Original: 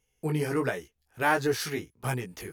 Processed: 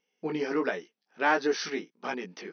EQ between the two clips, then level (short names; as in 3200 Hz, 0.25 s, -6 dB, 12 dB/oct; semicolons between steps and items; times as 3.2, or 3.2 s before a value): brick-wall FIR band-pass 170–6200 Hz; 0.0 dB